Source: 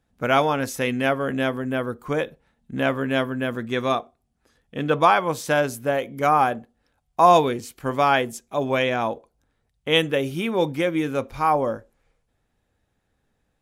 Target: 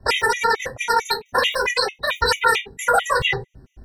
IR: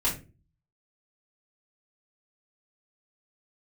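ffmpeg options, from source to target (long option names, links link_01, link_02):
-filter_complex "[0:a]aemphasis=mode=reproduction:type=bsi,alimiter=limit=-11.5dB:level=0:latency=1,tremolo=f=9.4:d=0.71,asetrate=156114,aresample=44100,asplit=2[link_01][link_02];[link_02]acompressor=threshold=-33dB:ratio=6,volume=2dB[link_03];[link_01][link_03]amix=inputs=2:normalize=0[link_04];[1:a]atrim=start_sample=2205,asetrate=66150,aresample=44100[link_05];[link_04][link_05]afir=irnorm=-1:irlink=0,afftfilt=real='re*gt(sin(2*PI*4.5*pts/sr)*(1-2*mod(floor(b*sr/1024/1900),2)),0)':imag='im*gt(sin(2*PI*4.5*pts/sr)*(1-2*mod(floor(b*sr/1024/1900),2)),0)':win_size=1024:overlap=0.75"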